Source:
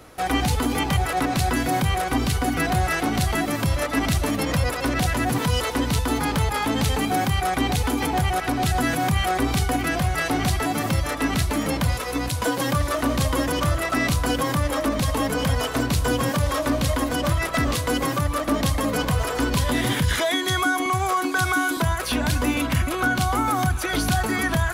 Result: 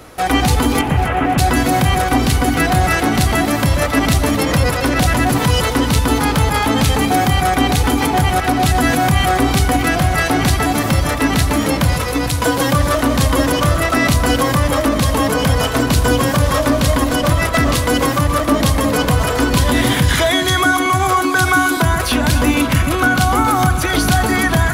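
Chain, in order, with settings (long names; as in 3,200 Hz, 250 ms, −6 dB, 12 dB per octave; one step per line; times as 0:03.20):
0:00.81–0:01.38: variable-slope delta modulation 16 kbit/s
delay that swaps between a low-pass and a high-pass 136 ms, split 1,500 Hz, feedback 68%, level −9.5 dB
level +7.5 dB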